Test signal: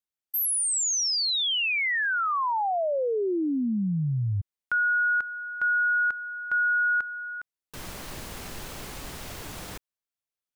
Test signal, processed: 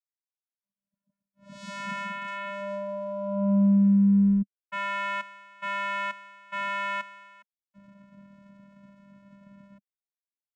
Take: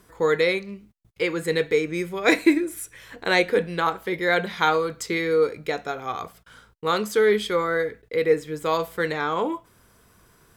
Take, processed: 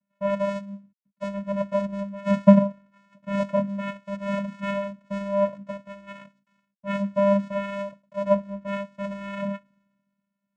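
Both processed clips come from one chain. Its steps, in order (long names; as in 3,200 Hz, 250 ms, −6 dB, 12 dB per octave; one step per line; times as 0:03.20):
variable-slope delta modulation 16 kbit/s
channel vocoder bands 4, square 199 Hz
multiband upward and downward expander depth 70%
level −2 dB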